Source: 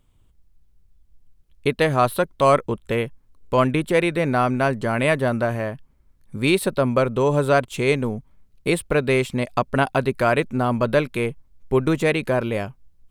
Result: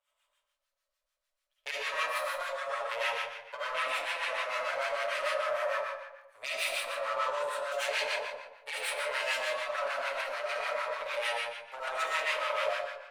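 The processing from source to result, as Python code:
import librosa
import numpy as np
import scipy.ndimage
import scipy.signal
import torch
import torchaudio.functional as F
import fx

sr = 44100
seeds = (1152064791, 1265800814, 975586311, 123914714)

p1 = fx.lower_of_two(x, sr, delay_ms=7.0)
p2 = scipy.signal.sosfilt(scipy.signal.ellip(4, 1.0, 40, 570.0, 'highpass', fs=sr, output='sos'), p1)
p3 = fx.high_shelf(p2, sr, hz=12000.0, db=-10.5)
p4 = p3 + fx.echo_feedback(p3, sr, ms=119, feedback_pct=25, wet_db=-6.5, dry=0)
p5 = fx.over_compress(p4, sr, threshold_db=-28.0, ratio=-1.0)
p6 = fx.peak_eq(p5, sr, hz=760.0, db=-11.0, octaves=0.31)
p7 = fx.rev_freeverb(p6, sr, rt60_s=1.0, hf_ratio=0.85, predelay_ms=35, drr_db=-7.5)
p8 = fx.harmonic_tremolo(p7, sr, hz=6.7, depth_pct=70, crossover_hz=940.0)
y = F.gain(torch.from_numpy(p8), -8.0).numpy()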